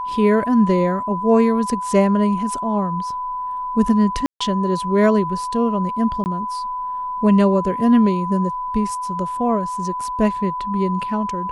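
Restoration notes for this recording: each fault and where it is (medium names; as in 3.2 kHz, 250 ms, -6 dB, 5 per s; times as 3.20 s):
whine 1 kHz -23 dBFS
4.26–4.41 s: dropout 145 ms
6.24–6.26 s: dropout 19 ms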